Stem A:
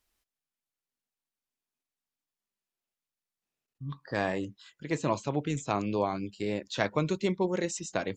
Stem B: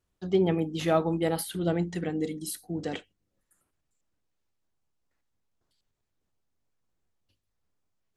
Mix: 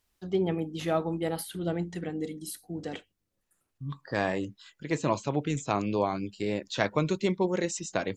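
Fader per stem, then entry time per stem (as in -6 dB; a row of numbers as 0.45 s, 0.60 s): +1.5 dB, -3.5 dB; 0.00 s, 0.00 s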